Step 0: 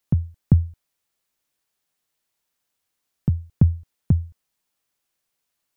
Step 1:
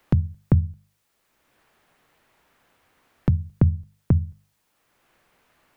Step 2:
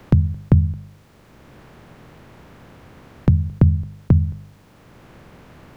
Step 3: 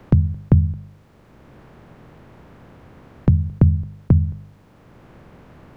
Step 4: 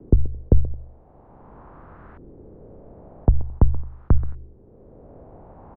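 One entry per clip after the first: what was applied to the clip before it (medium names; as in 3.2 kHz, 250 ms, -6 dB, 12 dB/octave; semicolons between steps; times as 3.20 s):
hum notches 50/100/150/200 Hz; three bands compressed up and down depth 70%; trim +2 dB
spectral levelling over time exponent 0.6; trim +3 dB
treble shelf 2.2 kHz -8 dB
speakerphone echo 130 ms, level -17 dB; frequency shift -81 Hz; LFO low-pass saw up 0.46 Hz 360–1500 Hz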